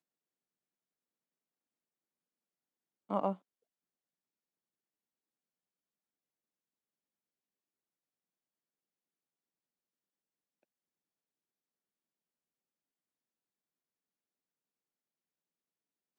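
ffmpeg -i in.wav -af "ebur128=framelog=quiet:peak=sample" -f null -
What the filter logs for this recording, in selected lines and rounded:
Integrated loudness:
  I:         -37.0 LUFS
  Threshold: -47.0 LUFS
Loudness range:
  LRA:         2.8 LU
  Threshold: -64.3 LUFS
  LRA low:   -46.8 LUFS
  LRA high:  -44.0 LUFS
Sample peak:
  Peak:      -18.5 dBFS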